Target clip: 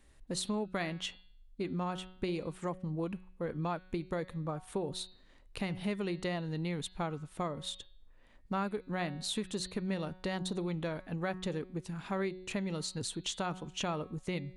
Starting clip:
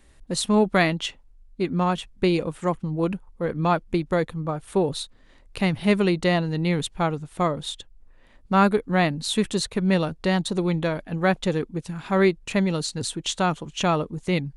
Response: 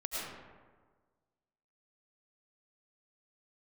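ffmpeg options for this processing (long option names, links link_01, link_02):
-af "bandreject=frequency=184.9:width_type=h:width=4,bandreject=frequency=369.8:width_type=h:width=4,bandreject=frequency=554.7:width_type=h:width=4,bandreject=frequency=739.6:width_type=h:width=4,bandreject=frequency=924.5:width_type=h:width=4,bandreject=frequency=1109.4:width_type=h:width=4,bandreject=frequency=1294.3:width_type=h:width=4,bandreject=frequency=1479.2:width_type=h:width=4,bandreject=frequency=1664.1:width_type=h:width=4,bandreject=frequency=1849:width_type=h:width=4,bandreject=frequency=2033.9:width_type=h:width=4,bandreject=frequency=2218.8:width_type=h:width=4,bandreject=frequency=2403.7:width_type=h:width=4,bandreject=frequency=2588.6:width_type=h:width=4,bandreject=frequency=2773.5:width_type=h:width=4,bandreject=frequency=2958.4:width_type=h:width=4,bandreject=frequency=3143.3:width_type=h:width=4,bandreject=frequency=3328.2:width_type=h:width=4,bandreject=frequency=3513.1:width_type=h:width=4,bandreject=frequency=3698:width_type=h:width=4,bandreject=frequency=3882.9:width_type=h:width=4,bandreject=frequency=4067.8:width_type=h:width=4,bandreject=frequency=4252.7:width_type=h:width=4,bandreject=frequency=4437.6:width_type=h:width=4,bandreject=frequency=4622.5:width_type=h:width=4,bandreject=frequency=4807.4:width_type=h:width=4,acompressor=threshold=-25dB:ratio=4,volume=-7.5dB"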